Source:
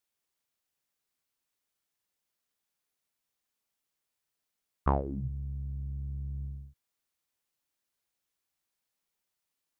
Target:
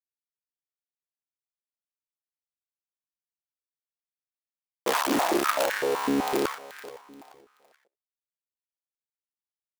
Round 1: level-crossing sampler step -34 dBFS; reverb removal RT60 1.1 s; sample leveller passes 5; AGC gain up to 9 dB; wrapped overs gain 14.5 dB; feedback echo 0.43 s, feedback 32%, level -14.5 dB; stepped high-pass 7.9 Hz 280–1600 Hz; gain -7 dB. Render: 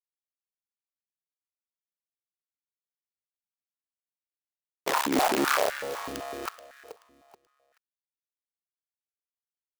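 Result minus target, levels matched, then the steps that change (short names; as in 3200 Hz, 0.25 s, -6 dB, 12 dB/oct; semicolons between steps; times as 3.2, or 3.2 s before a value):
level-crossing sampler: distortion +6 dB
change: level-crossing sampler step -40.5 dBFS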